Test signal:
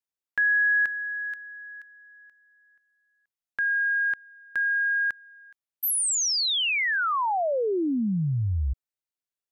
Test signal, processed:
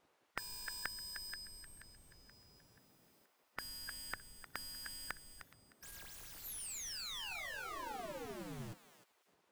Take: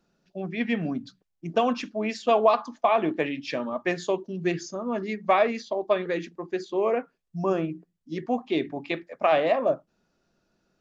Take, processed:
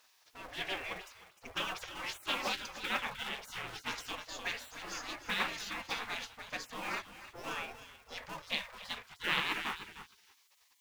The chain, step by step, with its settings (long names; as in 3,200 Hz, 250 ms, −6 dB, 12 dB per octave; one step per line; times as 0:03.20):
mu-law and A-law mismatch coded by mu
harmonic and percussive parts rebalanced harmonic +5 dB
feedback echo with a high-pass in the loop 306 ms, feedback 21%, high-pass 800 Hz, level −9 dB
background noise brown −60 dBFS
gate on every frequency bin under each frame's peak −25 dB weak
highs frequency-modulated by the lows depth 0.16 ms
level +1 dB